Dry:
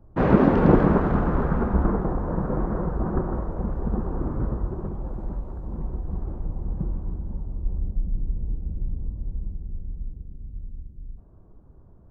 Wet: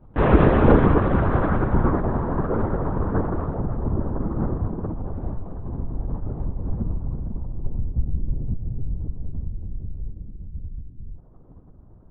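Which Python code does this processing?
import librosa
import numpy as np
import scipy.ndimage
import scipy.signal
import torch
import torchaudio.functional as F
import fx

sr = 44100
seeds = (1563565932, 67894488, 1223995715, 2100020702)

y = fx.high_shelf(x, sr, hz=2300.0, db=fx.steps((0.0, 8.0), (3.53, -5.5)))
y = fx.lpc_vocoder(y, sr, seeds[0], excitation='whisper', order=10)
y = y * 10.0 ** (2.0 / 20.0)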